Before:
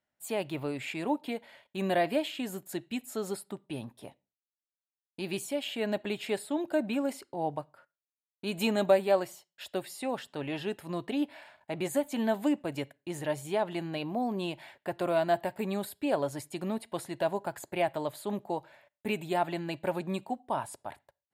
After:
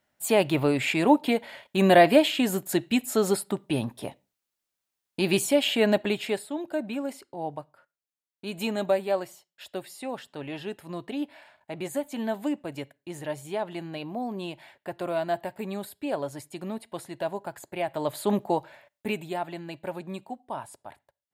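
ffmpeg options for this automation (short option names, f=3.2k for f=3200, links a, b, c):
-af "volume=21.5dB,afade=t=out:st=5.71:d=0.79:silence=0.251189,afade=t=in:st=17.88:d=0.4:silence=0.298538,afade=t=out:st=18.28:d=1.11:silence=0.237137"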